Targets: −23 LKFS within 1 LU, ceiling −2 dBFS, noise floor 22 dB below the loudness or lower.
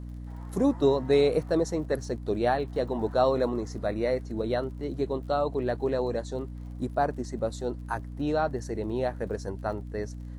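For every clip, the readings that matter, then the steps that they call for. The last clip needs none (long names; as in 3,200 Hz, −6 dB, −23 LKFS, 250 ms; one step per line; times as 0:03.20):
crackle rate 48 per second; mains hum 60 Hz; hum harmonics up to 300 Hz; level of the hum −36 dBFS; integrated loudness −29.0 LKFS; sample peak −11.5 dBFS; target loudness −23.0 LKFS
→ click removal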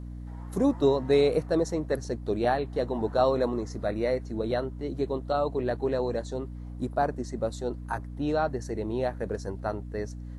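crackle rate 0.19 per second; mains hum 60 Hz; hum harmonics up to 300 Hz; level of the hum −36 dBFS
→ hum removal 60 Hz, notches 5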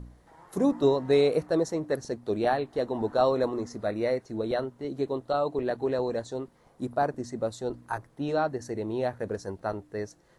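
mains hum none found; integrated loudness −29.0 LKFS; sample peak −11.0 dBFS; target loudness −23.0 LKFS
→ level +6 dB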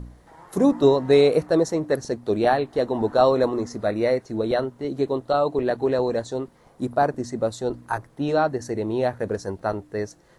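integrated loudness −23.0 LKFS; sample peak −5.0 dBFS; background noise floor −55 dBFS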